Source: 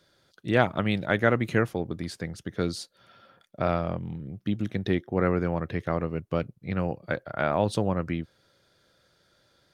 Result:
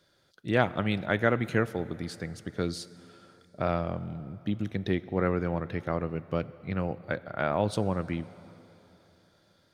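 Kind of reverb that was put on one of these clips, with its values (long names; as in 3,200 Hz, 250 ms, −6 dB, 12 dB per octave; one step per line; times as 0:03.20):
dense smooth reverb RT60 3.5 s, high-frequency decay 0.85×, DRR 16.5 dB
level −2.5 dB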